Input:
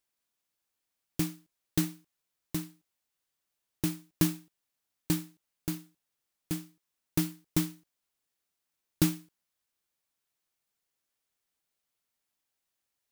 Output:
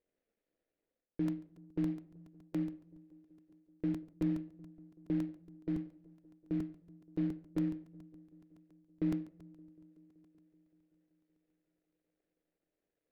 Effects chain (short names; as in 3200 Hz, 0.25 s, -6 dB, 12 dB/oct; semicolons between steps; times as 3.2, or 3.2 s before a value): median filter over 41 samples; graphic EQ 125/250/500/1000/2000/4000/8000 Hz -7/+3/+11/-6/+8/+4/-4 dB; reverse; compressor 4:1, threshold -40 dBFS, peak gain reduction 18.5 dB; reverse; tape spacing loss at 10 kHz 22 dB; on a send: dark delay 0.19 s, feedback 76%, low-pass 810 Hz, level -21.5 dB; on the sum: shoebox room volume 870 m³, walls furnished, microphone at 0.62 m; crackling interface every 0.14 s, samples 128, repeat, from 0.72; gain +5 dB